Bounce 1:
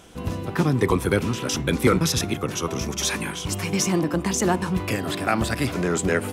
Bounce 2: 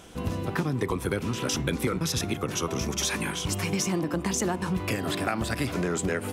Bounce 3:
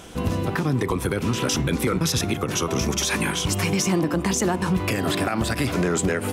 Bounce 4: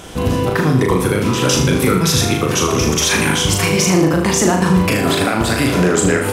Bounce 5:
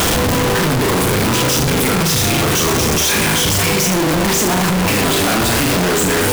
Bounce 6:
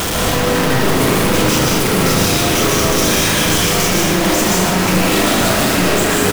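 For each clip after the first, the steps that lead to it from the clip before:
downward compressor 6 to 1, threshold −24 dBFS, peak gain reduction 11 dB
brickwall limiter −19.5 dBFS, peak gain reduction 8 dB; level +6.5 dB
flutter between parallel walls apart 6.6 metres, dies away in 0.56 s; level +6.5 dB
sign of each sample alone
single-tap delay 876 ms −8 dB; convolution reverb RT60 1.1 s, pre-delay 105 ms, DRR −3 dB; level −4 dB

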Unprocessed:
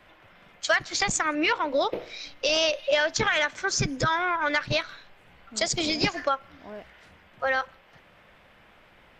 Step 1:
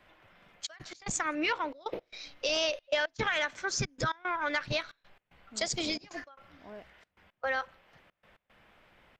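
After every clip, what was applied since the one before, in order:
gate pattern "xxxxx.x." 113 BPM −24 dB
level −6 dB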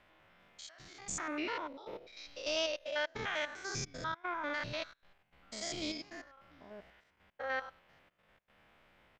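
spectrum averaged block by block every 100 ms
level −3 dB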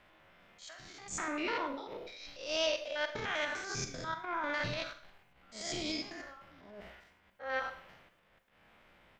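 transient designer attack −12 dB, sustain +6 dB
four-comb reverb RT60 0.47 s, combs from 32 ms, DRR 8 dB
level +2.5 dB

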